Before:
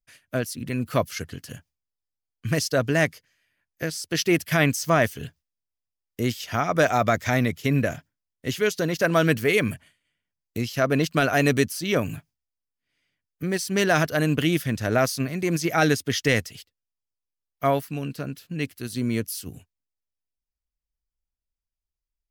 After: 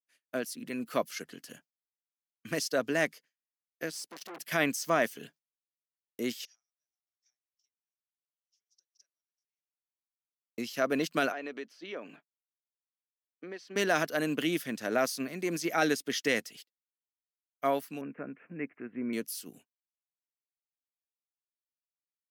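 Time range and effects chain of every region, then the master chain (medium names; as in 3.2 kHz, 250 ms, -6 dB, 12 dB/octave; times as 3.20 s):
3.91–4.39 s: overload inside the chain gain 28.5 dB + transformer saturation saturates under 870 Hz
6.45–10.58 s: compression 4:1, threshold -33 dBFS + band-pass filter 5.6 kHz, Q 12
11.32–13.76 s: high-pass 330 Hz + compression 2.5:1, threshold -31 dBFS + distance through air 230 m
18.01–19.13 s: steep low-pass 2.4 kHz 72 dB/octave + upward compressor, threshold -29 dBFS
whole clip: expander -42 dBFS; high-pass 210 Hz 24 dB/octave; trim -6.5 dB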